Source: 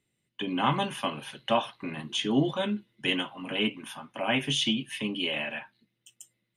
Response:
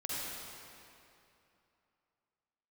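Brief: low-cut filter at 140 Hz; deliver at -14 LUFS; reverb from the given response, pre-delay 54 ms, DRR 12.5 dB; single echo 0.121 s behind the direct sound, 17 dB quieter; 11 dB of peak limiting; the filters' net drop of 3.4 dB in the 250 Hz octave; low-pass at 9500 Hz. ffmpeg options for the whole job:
-filter_complex "[0:a]highpass=140,lowpass=9.5k,equalizer=f=250:t=o:g=-3.5,alimiter=limit=-22.5dB:level=0:latency=1,aecho=1:1:121:0.141,asplit=2[a][b];[1:a]atrim=start_sample=2205,adelay=54[c];[b][c]afir=irnorm=-1:irlink=0,volume=-16dB[d];[a][d]amix=inputs=2:normalize=0,volume=19.5dB"

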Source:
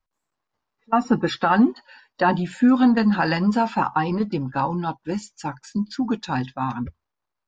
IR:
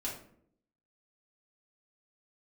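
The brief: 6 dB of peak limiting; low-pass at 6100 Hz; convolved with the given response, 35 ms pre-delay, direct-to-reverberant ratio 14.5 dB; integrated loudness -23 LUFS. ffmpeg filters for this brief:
-filter_complex "[0:a]lowpass=6.1k,alimiter=limit=-13dB:level=0:latency=1,asplit=2[a][b];[1:a]atrim=start_sample=2205,adelay=35[c];[b][c]afir=irnorm=-1:irlink=0,volume=-16dB[d];[a][d]amix=inputs=2:normalize=0,volume=1dB"

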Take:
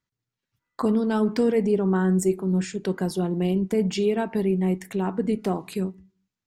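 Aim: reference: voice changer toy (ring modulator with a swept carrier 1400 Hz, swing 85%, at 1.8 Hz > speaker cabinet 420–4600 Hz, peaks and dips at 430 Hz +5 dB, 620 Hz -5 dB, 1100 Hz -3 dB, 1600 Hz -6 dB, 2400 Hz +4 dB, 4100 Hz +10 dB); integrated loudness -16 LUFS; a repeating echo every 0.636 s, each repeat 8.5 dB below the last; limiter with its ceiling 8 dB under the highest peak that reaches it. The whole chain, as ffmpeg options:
-af "alimiter=limit=-19.5dB:level=0:latency=1,aecho=1:1:636|1272|1908|2544:0.376|0.143|0.0543|0.0206,aeval=exprs='val(0)*sin(2*PI*1400*n/s+1400*0.85/1.8*sin(2*PI*1.8*n/s))':c=same,highpass=420,equalizer=f=430:t=q:w=4:g=5,equalizer=f=620:t=q:w=4:g=-5,equalizer=f=1.1k:t=q:w=4:g=-3,equalizer=f=1.6k:t=q:w=4:g=-6,equalizer=f=2.4k:t=q:w=4:g=4,equalizer=f=4.1k:t=q:w=4:g=10,lowpass=f=4.6k:w=0.5412,lowpass=f=4.6k:w=1.3066,volume=12dB"

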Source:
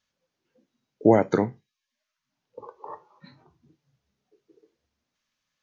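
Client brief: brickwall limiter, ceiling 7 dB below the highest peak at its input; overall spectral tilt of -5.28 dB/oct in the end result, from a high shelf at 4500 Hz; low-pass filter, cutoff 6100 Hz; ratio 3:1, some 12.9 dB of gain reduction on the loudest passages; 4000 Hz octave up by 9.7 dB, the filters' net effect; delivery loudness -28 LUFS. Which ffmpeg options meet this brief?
-af "lowpass=6.1k,equalizer=f=4k:t=o:g=7.5,highshelf=f=4.5k:g=8,acompressor=threshold=-29dB:ratio=3,volume=11.5dB,alimiter=limit=-10.5dB:level=0:latency=1"

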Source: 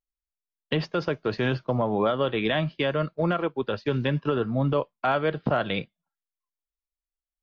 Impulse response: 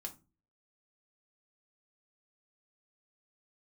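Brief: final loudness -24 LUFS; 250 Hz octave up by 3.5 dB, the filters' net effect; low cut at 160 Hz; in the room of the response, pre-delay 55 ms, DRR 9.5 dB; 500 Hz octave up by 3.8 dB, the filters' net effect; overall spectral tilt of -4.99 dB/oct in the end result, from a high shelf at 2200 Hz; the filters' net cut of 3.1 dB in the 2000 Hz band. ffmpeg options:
-filter_complex "[0:a]highpass=160,equalizer=f=250:t=o:g=4.5,equalizer=f=500:t=o:g=3.5,equalizer=f=2k:t=o:g=-9,highshelf=f=2.2k:g=7.5,asplit=2[a][b];[1:a]atrim=start_sample=2205,adelay=55[c];[b][c]afir=irnorm=-1:irlink=0,volume=-6dB[d];[a][d]amix=inputs=2:normalize=0,volume=-0.5dB"

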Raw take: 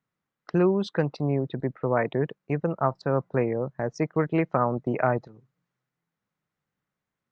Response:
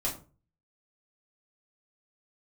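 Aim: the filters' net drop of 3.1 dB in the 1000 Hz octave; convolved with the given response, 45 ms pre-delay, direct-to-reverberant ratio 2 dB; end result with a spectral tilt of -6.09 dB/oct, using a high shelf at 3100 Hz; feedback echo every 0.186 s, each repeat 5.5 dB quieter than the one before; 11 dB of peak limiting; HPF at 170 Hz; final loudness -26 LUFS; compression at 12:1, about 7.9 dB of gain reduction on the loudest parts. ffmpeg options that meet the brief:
-filter_complex "[0:a]highpass=170,equalizer=f=1k:t=o:g=-5,highshelf=f=3.1k:g=6,acompressor=threshold=-27dB:ratio=12,alimiter=level_in=1dB:limit=-24dB:level=0:latency=1,volume=-1dB,aecho=1:1:186|372|558|744|930|1116|1302:0.531|0.281|0.149|0.079|0.0419|0.0222|0.0118,asplit=2[a][b];[1:a]atrim=start_sample=2205,adelay=45[c];[b][c]afir=irnorm=-1:irlink=0,volume=-7dB[d];[a][d]amix=inputs=2:normalize=0,volume=6.5dB"

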